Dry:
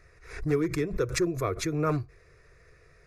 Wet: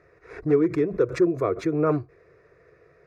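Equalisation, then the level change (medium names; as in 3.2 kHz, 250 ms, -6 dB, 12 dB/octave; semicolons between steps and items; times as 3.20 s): high-pass 360 Hz 12 dB/octave; tilt EQ -4.5 dB/octave; treble shelf 5.1 kHz -6 dB; +3.5 dB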